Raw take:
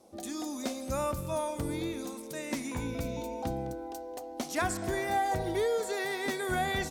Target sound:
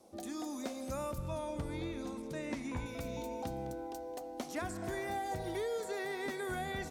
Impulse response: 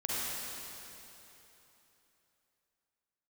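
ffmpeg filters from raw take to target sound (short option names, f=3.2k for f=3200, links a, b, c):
-filter_complex "[0:a]asettb=1/sr,asplit=3[a][b][c];[a]atrim=end=1.184[d];[b]atrim=start=1.18:end=2.86,asetpts=PTS-STARTPTS,afade=t=in:d=0.004:c=qsin,afade=t=out:st=1.676:d=0.004:c=qsin,aemphasis=mode=reproduction:type=bsi[e];[c]atrim=start=2.856[f];[d][e]acrossfade=d=0.004:c1=hsin:c2=qsin[g];[g][f]acrossfade=d=0.004:c1=qsin:c2=hsin,acrossover=split=540|2200[h][i][j];[h]acompressor=threshold=-37dB:ratio=4[k];[i]acompressor=threshold=-40dB:ratio=4[l];[j]acompressor=threshold=-48dB:ratio=4[m];[k][l][m]amix=inputs=3:normalize=0,asplit=2[n][o];[1:a]atrim=start_sample=2205,asetrate=33075,aresample=44100[p];[o][p]afir=irnorm=-1:irlink=0,volume=-26dB[q];[n][q]amix=inputs=2:normalize=0,volume=-2.5dB"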